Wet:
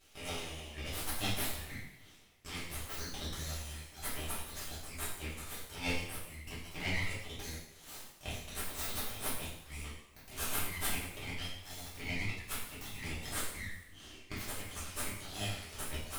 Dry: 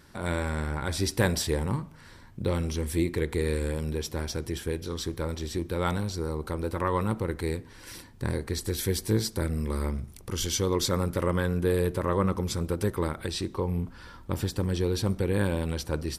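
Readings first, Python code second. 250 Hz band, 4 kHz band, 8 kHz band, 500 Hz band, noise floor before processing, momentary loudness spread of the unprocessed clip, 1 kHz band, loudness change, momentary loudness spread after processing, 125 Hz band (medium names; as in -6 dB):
-17.0 dB, -5.0 dB, -4.5 dB, -19.0 dB, -50 dBFS, 7 LU, -11.0 dB, -10.5 dB, 10 LU, -15.5 dB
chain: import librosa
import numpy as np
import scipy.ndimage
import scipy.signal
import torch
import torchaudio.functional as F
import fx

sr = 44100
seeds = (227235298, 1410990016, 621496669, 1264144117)

y = fx.dereverb_blind(x, sr, rt60_s=1.5)
y = fx.brickwall_bandpass(y, sr, low_hz=800.0, high_hz=12000.0)
y = np.abs(y)
y = fx.rev_double_slope(y, sr, seeds[0], early_s=0.72, late_s=2.0, knee_db=-18, drr_db=-9.0)
y = fx.rider(y, sr, range_db=4, speed_s=2.0)
y = F.gain(torch.from_numpy(y), -8.5).numpy()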